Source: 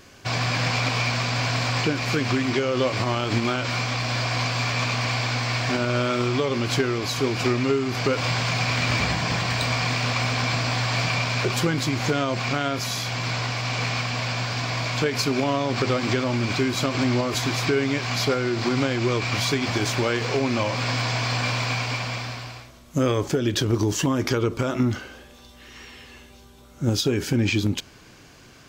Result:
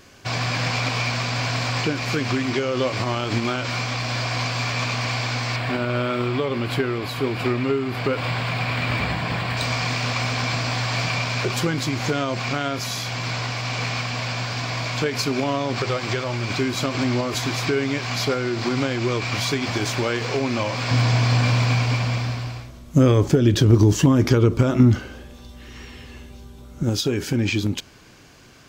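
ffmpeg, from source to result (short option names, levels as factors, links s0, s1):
-filter_complex "[0:a]asettb=1/sr,asplit=3[s0][s1][s2];[s0]atrim=end=5.564[s3];[s1]atrim=start=5.56:end=9.57,asetpts=PTS-STARTPTS,afade=t=in:d=0.004:c=qsin,afade=t=out:st=4.006:d=0.004:c=qsin,equalizer=f=6100:w=1.9:g=-14.5[s4];[s2]atrim=start=9.566[s5];[s3][s4]acrossfade=d=0.004:c1=hsin:c2=qsin[s6];[s6][s5]acrossfade=d=0.004:c1=qsin:c2=hsin,asettb=1/sr,asplit=3[s7][s8][s9];[s7]atrim=end=15.784[s10];[s8]atrim=start=15.78:end=16.5,asetpts=PTS-STARTPTS,afade=t=in:d=0.004:c=qsin,afade=t=out:st=0.716:d=0.004:c=qsin,equalizer=f=260:w=2.7:g=-10[s11];[s9]atrim=start=16.496[s12];[s10][s11]acrossfade=d=0.004:c1=hsin:c2=qsin[s13];[s13][s12]acrossfade=d=0.004:c1=qsin:c2=hsin,asettb=1/sr,asplit=3[s14][s15][s16];[s14]atrim=end=20.914[s17];[s15]atrim=start=20.91:end=26.83,asetpts=PTS-STARTPTS,afade=t=in:d=0.004:c=qsin,afade=t=out:st=5.916:d=0.004:c=qsin,lowshelf=f=330:g=11[s18];[s16]atrim=start=26.826[s19];[s17][s18]acrossfade=d=0.004:c1=hsin:c2=qsin[s20];[s20][s19]acrossfade=d=0.004:c1=qsin:c2=hsin"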